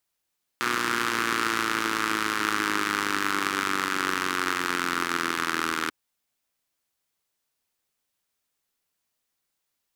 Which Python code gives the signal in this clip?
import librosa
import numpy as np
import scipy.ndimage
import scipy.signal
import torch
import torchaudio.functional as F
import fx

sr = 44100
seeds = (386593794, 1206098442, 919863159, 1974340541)

y = fx.engine_four_rev(sr, seeds[0], length_s=5.29, rpm=3600, resonances_hz=(320.0, 1300.0), end_rpm=2400)